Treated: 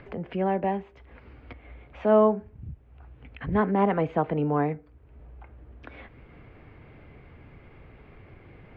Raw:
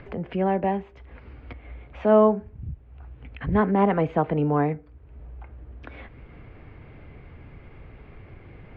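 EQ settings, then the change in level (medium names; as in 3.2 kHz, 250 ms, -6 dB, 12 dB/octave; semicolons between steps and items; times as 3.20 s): bass shelf 100 Hz -5.5 dB; -2.0 dB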